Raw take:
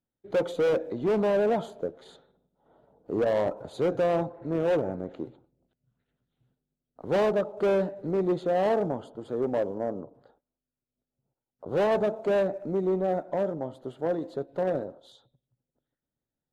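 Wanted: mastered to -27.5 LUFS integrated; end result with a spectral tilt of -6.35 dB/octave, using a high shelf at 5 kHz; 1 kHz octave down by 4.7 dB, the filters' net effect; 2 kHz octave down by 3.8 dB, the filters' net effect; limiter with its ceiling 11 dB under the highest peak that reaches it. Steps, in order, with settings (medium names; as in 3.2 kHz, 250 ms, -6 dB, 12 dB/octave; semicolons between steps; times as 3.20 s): peaking EQ 1 kHz -7 dB; peaking EQ 2 kHz -3 dB; treble shelf 5 kHz +5.5 dB; trim +10 dB; peak limiter -19 dBFS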